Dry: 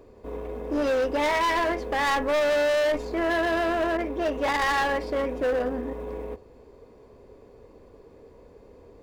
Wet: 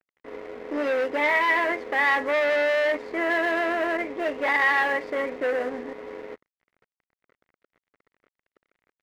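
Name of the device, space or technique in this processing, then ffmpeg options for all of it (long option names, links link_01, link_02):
pocket radio on a weak battery: -af "highpass=260,lowpass=3500,aeval=exprs='sgn(val(0))*max(abs(val(0))-0.00562,0)':channel_layout=same,equalizer=frequency=2000:width_type=o:width=0.41:gain=10"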